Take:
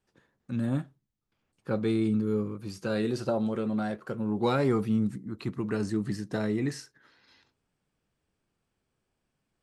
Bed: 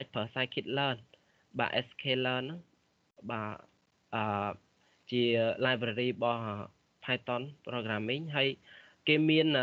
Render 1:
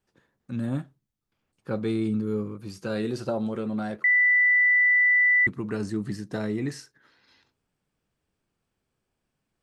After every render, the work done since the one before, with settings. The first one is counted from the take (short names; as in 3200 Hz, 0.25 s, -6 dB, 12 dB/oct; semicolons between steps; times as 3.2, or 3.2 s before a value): 4.04–5.47 bleep 1980 Hz -16.5 dBFS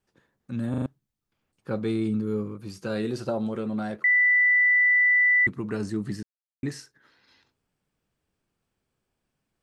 0.7 stutter in place 0.04 s, 4 plays; 6.23–6.63 mute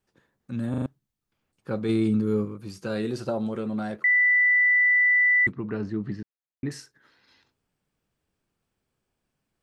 1.89–2.45 gain +3.5 dB; 5.52–6.71 air absorption 250 m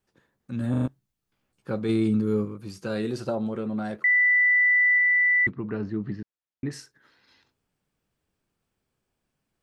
0.59–1.71 doubler 16 ms -4 dB; 3.35–3.85 high shelf 3800 Hz -7.5 dB; 4.98–6.73 air absorption 95 m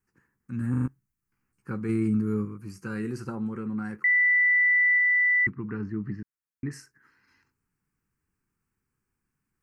fixed phaser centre 1500 Hz, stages 4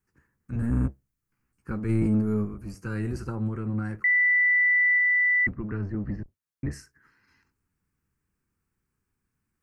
octaver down 1 oct, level -1 dB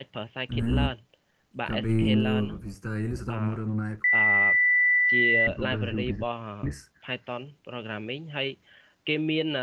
add bed -0.5 dB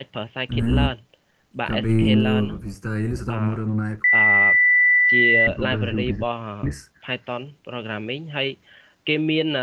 gain +5.5 dB